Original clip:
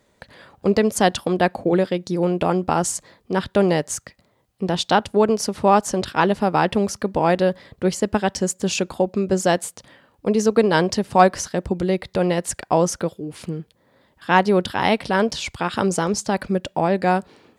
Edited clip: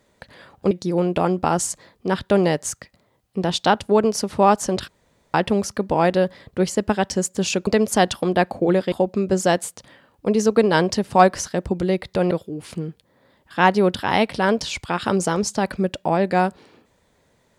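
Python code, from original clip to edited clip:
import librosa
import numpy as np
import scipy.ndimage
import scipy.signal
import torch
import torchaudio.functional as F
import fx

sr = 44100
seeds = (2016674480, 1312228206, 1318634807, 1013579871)

y = fx.edit(x, sr, fx.move(start_s=0.71, length_s=1.25, to_s=8.92),
    fx.room_tone_fill(start_s=6.13, length_s=0.46),
    fx.cut(start_s=12.31, length_s=0.71), tone=tone)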